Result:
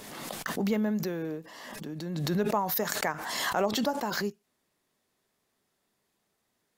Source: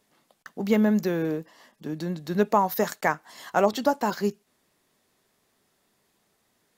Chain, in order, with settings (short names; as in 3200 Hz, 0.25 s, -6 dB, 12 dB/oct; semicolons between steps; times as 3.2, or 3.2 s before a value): backwards sustainer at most 30 dB/s; gain -7.5 dB